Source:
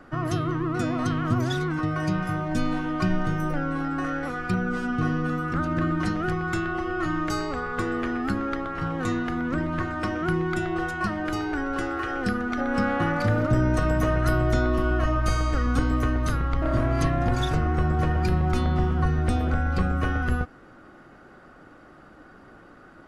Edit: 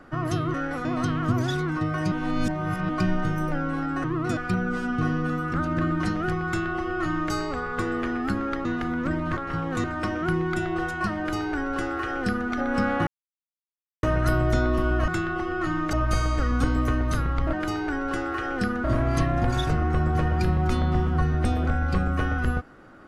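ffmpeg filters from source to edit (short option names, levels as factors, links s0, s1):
-filter_complex "[0:a]asplit=16[s0][s1][s2][s3][s4][s5][s6][s7][s8][s9][s10][s11][s12][s13][s14][s15];[s0]atrim=end=0.542[s16];[s1]atrim=start=4.058:end=4.372[s17];[s2]atrim=start=0.868:end=2.142[s18];[s3]atrim=start=2.138:end=2.912,asetpts=PTS-STARTPTS,areverse[s19];[s4]atrim=start=2.908:end=4.062[s20];[s5]atrim=start=0.538:end=0.872[s21];[s6]atrim=start=4.368:end=8.652[s22];[s7]atrim=start=9.118:end=9.842[s23];[s8]atrim=start=8.648:end=9.122[s24];[s9]atrim=start=9.838:end=13.07,asetpts=PTS-STARTPTS,afade=t=out:st=3.228:d=0.004:c=hsin[s25];[s10]atrim=start=13.07:end=14.03,asetpts=PTS-STARTPTS,volume=0[s26];[s11]atrim=start=14.03:end=15.082,asetpts=PTS-STARTPTS,afade=t=in:d=0.004:c=hsin[s27];[s12]atrim=start=6.468:end=7.322[s28];[s13]atrim=start=15.078:end=16.682[s29];[s14]atrim=start=11.178:end=12.492[s30];[s15]atrim=start=16.678[s31];[s16][s17]acrossfade=d=0.004:c1=hsin:c2=hsin[s32];[s32][s18]acrossfade=d=0.004:c1=hsin:c2=hsin[s33];[s33][s19]acrossfade=d=0.004:c1=hsin:c2=hsin[s34];[s34][s20]acrossfade=d=0.004:c1=hsin:c2=hsin[s35];[s35][s21]acrossfade=d=0.004:c1=hsin:c2=hsin[s36];[s36][s22]acrossfade=d=0.004:c1=hsin:c2=hsin[s37];[s37][s23]acrossfade=d=0.004:c1=hsin:c2=hsin[s38];[s38][s24]acrossfade=d=0.004:c1=hsin:c2=hsin[s39];[s25][s26][s27]concat=n=3:v=0:a=1[s40];[s39][s40]acrossfade=d=0.004:c1=hsin:c2=hsin[s41];[s41][s28]acrossfade=d=0.004:c1=hsin:c2=hsin[s42];[s42][s29]acrossfade=d=0.004:c1=hsin:c2=hsin[s43];[s43][s30]acrossfade=d=0.004:c1=hsin:c2=hsin[s44];[s44][s31]acrossfade=d=0.004:c1=hsin:c2=hsin"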